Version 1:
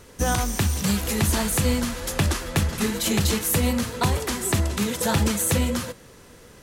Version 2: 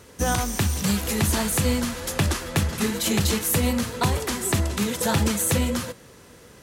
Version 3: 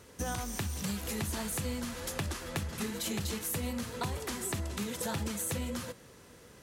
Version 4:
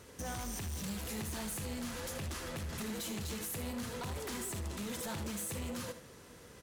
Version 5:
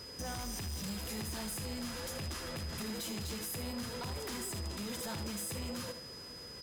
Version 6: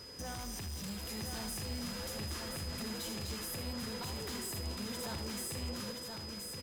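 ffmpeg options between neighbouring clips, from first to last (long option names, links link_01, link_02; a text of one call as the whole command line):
ffmpeg -i in.wav -af "highpass=55" out.wav
ffmpeg -i in.wav -af "acompressor=threshold=-28dB:ratio=2.5,volume=-6.5dB" out.wav
ffmpeg -i in.wav -filter_complex "[0:a]alimiter=level_in=4dB:limit=-24dB:level=0:latency=1,volume=-4dB,asoftclip=type=hard:threshold=-37dB,asplit=2[link_01][link_02];[link_02]aecho=0:1:78:0.282[link_03];[link_01][link_03]amix=inputs=2:normalize=0" out.wav
ffmpeg -i in.wav -filter_complex "[0:a]asplit=2[link_01][link_02];[link_02]alimiter=level_in=20.5dB:limit=-24dB:level=0:latency=1,volume=-20.5dB,volume=-1.5dB[link_03];[link_01][link_03]amix=inputs=2:normalize=0,aeval=exprs='val(0)+0.00562*sin(2*PI*5000*n/s)':channel_layout=same,volume=-2.5dB" out.wav
ffmpeg -i in.wav -af "aecho=1:1:1025:0.596,volume=-2dB" out.wav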